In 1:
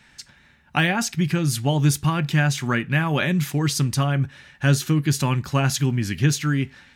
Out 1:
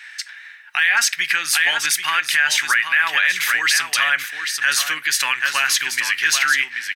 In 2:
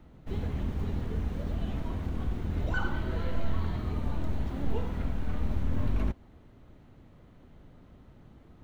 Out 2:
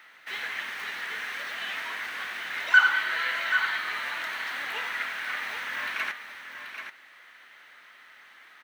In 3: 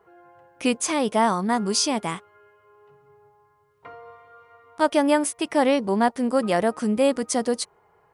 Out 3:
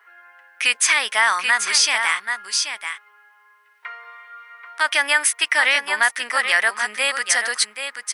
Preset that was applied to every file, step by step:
resonant high-pass 1800 Hz, resonance Q 2.9; notch 7000 Hz, Q 14; echo 0.783 s -8.5 dB; maximiser +14.5 dB; normalise peaks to -6 dBFS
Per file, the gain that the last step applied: -5.0, -0.5, -5.0 dB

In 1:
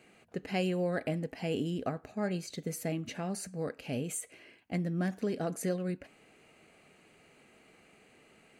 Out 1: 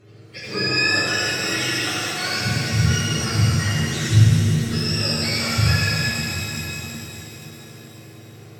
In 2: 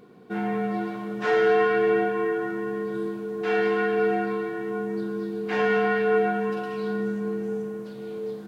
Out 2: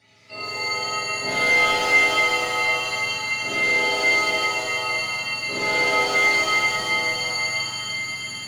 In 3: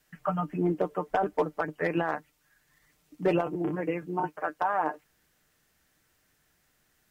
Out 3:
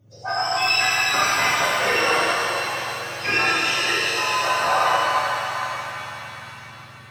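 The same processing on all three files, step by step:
spectrum mirrored in octaves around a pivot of 960 Hz; one-sided clip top -23 dBFS; shimmer reverb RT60 3.9 s, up +7 st, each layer -8 dB, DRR -9.5 dB; match loudness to -20 LUFS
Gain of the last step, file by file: +4.5, -5.0, +3.5 dB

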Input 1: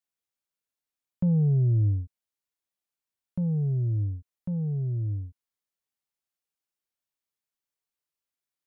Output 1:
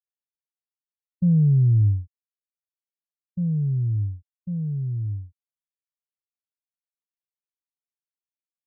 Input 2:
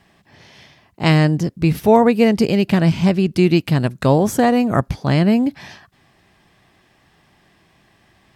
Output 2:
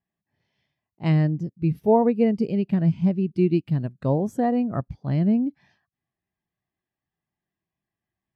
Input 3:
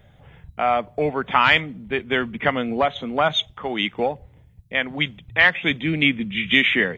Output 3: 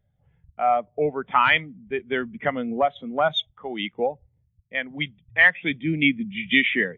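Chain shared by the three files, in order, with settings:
spectral expander 1.5:1; match loudness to -23 LUFS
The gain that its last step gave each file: +5.5, -6.0, -2.5 dB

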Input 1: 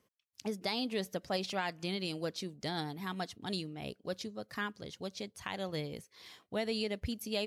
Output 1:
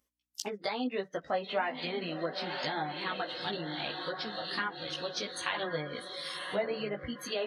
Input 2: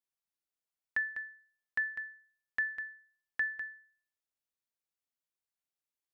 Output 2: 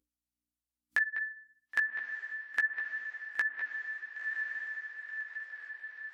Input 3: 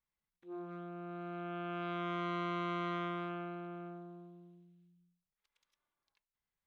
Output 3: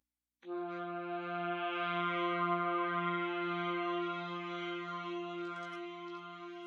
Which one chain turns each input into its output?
hum 60 Hz, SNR 32 dB; on a send: diffused feedback echo 1.043 s, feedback 47%, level -7 dB; on the sum: treble ducked by the level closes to 1500 Hz, closed at -31.5 dBFS; spectral noise reduction 21 dB; HPF 540 Hz 6 dB/oct; chorus voices 6, 0.37 Hz, delay 16 ms, depth 4.2 ms; high shelf 4400 Hz +10 dB; in parallel at +3 dB: compressor, threshold -54 dBFS; on the sum: gain +7 dB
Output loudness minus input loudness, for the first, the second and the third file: +3.0, +2.0, +3.5 LU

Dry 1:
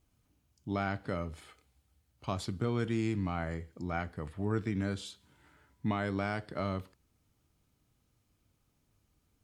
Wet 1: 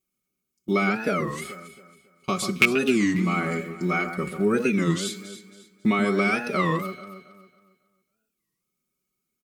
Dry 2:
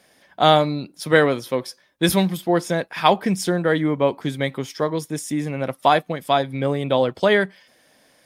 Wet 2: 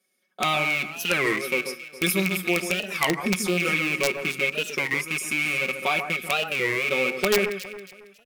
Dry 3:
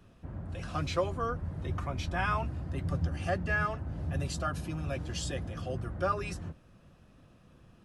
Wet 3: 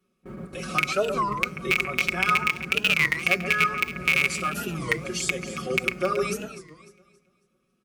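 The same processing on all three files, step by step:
rattling part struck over -29 dBFS, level -10 dBFS; pre-emphasis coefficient 0.9; gate with hold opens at -49 dBFS; comb 5.4 ms, depth 96%; compressor 1.5:1, threshold -49 dBFS; added harmonics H 7 -43 dB, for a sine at -18.5 dBFS; resonator 180 Hz, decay 0.57 s, harmonics all, mix 50%; small resonant body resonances 260/400/1200/2200 Hz, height 17 dB, ringing for 30 ms; wrapped overs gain 22 dB; echo with dull and thin repeats by turns 0.137 s, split 2000 Hz, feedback 57%, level -8 dB; record warp 33 1/3 rpm, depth 250 cents; match loudness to -24 LUFS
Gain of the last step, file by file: +22.0, +10.5, +18.0 dB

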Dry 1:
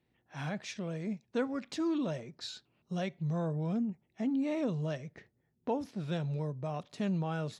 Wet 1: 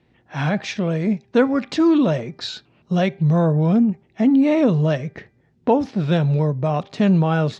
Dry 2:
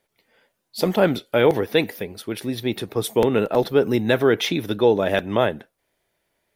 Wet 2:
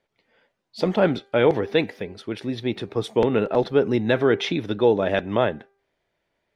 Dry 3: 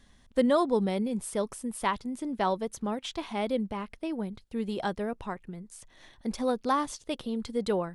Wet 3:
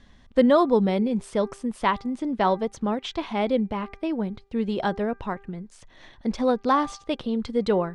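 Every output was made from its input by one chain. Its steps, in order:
air absorption 110 m; de-hum 396.6 Hz, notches 6; normalise peaks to -6 dBFS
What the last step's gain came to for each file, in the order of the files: +16.5, -1.0, +6.5 dB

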